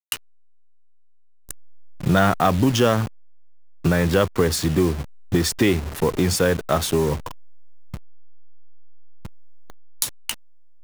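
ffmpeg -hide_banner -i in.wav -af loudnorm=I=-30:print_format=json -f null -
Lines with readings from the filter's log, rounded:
"input_i" : "-21.7",
"input_tp" : "-3.5",
"input_lra" : "13.9",
"input_thresh" : "-33.4",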